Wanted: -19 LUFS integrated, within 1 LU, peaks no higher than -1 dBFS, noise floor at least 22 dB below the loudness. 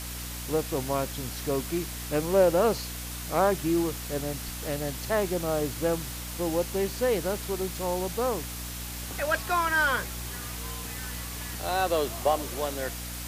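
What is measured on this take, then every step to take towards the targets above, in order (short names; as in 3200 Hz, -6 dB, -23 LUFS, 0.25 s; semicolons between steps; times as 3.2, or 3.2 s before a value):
hum 60 Hz; harmonics up to 300 Hz; hum level -37 dBFS; noise floor -37 dBFS; noise floor target -51 dBFS; loudness -28.5 LUFS; peak -11.0 dBFS; loudness target -19.0 LUFS
-> de-hum 60 Hz, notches 5; denoiser 14 dB, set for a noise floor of -37 dBFS; gain +9.5 dB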